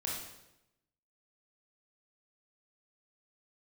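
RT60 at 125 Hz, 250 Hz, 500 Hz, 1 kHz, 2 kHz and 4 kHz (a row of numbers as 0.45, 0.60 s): 1.1, 1.0, 0.95, 0.85, 0.80, 0.80 s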